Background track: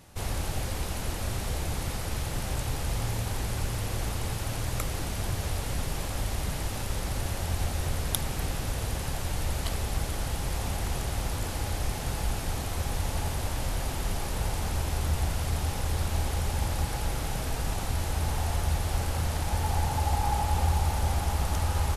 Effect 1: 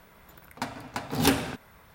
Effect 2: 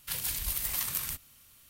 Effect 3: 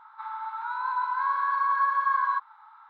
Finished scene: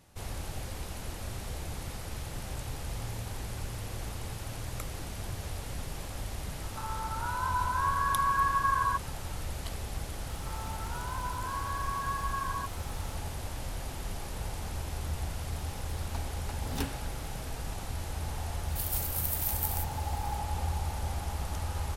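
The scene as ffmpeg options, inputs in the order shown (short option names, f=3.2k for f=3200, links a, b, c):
-filter_complex "[3:a]asplit=2[a][b];[0:a]volume=-7dB[c];[b]aeval=exprs='val(0)+0.5*0.0112*sgn(val(0))':c=same[d];[2:a]aemphasis=mode=production:type=50kf[e];[a]atrim=end=2.89,asetpts=PTS-STARTPTS,volume=-3dB,afade=t=in:d=0.004:c=hsin,afade=t=out:st=2.886:d=0.004:c=hsin,adelay=290178S[f];[d]atrim=end=2.89,asetpts=PTS-STARTPTS,volume=-11dB,afade=t=in:d=0.004:c=hsin,afade=t=out:st=2.886:d=0.004:c=hsin,adelay=10270[g];[1:a]atrim=end=1.94,asetpts=PTS-STARTPTS,volume=-14dB,afade=t=in:d=0.004:c=hsin,afade=t=out:st=1.936:d=0.004:c=hsin,adelay=15530[h];[e]atrim=end=1.69,asetpts=PTS-STARTPTS,volume=-12.5dB,afade=t=in:d=0.004:c=hsin,afade=t=out:st=1.686:d=0.004:c=hsin,adelay=18680[i];[c][f][g][h][i]amix=inputs=5:normalize=0"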